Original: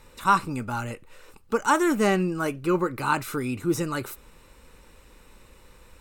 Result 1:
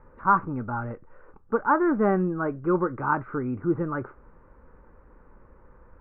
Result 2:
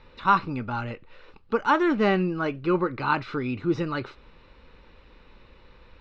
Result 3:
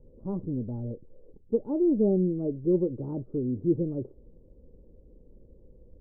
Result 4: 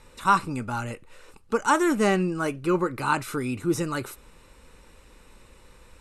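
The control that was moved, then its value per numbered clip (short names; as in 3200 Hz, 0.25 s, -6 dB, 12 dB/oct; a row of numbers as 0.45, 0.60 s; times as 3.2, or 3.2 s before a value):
steep low-pass, frequency: 1600, 4500, 540, 12000 Hz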